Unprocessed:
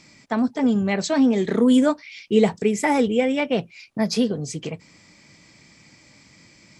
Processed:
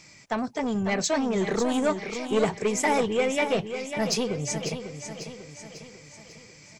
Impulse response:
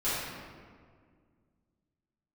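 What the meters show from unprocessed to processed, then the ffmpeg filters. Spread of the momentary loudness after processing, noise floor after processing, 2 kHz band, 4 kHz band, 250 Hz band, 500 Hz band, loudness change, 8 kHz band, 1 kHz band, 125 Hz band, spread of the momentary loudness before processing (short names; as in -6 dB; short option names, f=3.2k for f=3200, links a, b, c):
18 LU, -51 dBFS, -1.0 dB, -1.0 dB, -9.0 dB, -3.5 dB, -5.5 dB, +3.5 dB, -1.0 dB, -4.0 dB, 13 LU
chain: -af "asoftclip=type=tanh:threshold=-15dB,equalizer=f=6.5k:w=0.43:g=-5.5,aecho=1:1:546|1092|1638|2184|2730|3276:0.355|0.181|0.0923|0.0471|0.024|0.0122,crystalizer=i=0.5:c=0,equalizer=f=250:t=o:w=0.67:g=-9,equalizer=f=2.5k:t=o:w=0.67:g=3,equalizer=f=6.3k:t=o:w=0.67:g=8"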